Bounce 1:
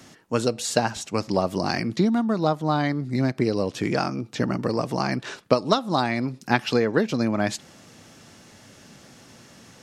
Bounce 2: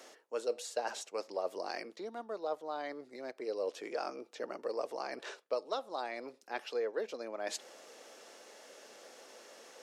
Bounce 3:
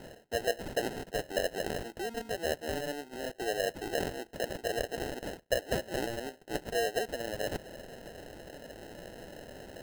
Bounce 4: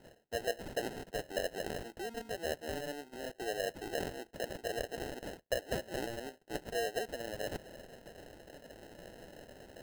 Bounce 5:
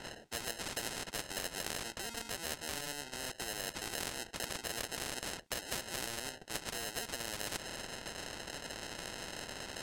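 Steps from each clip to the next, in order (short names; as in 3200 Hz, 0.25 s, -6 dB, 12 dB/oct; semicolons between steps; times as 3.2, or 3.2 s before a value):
reverse; compressor 6:1, threshold -31 dBFS, peak gain reduction 18 dB; reverse; ladder high-pass 410 Hz, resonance 50%; gain +4 dB
in parallel at -0.5 dB: compressor, threshold -44 dBFS, peak gain reduction 15 dB; on the sum: sample-and-hold 38×; gain +2 dB
gate -47 dBFS, range -8 dB; gain -4.5 dB
LPF 8700 Hz 12 dB/oct; spectral compressor 4:1; gain +5 dB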